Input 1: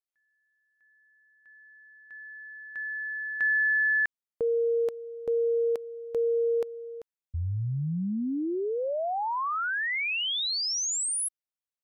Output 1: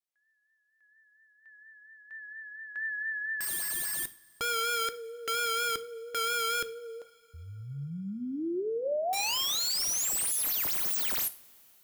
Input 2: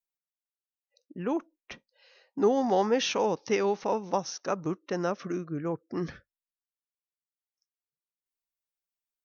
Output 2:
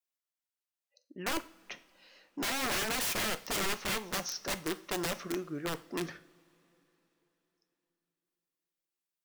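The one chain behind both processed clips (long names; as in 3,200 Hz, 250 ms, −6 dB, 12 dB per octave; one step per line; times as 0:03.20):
high-pass filter 410 Hz 6 dB per octave
pitch vibrato 4.3 Hz 48 cents
wrap-around overflow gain 27.5 dB
coupled-rooms reverb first 0.38 s, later 3.9 s, from −22 dB, DRR 10.5 dB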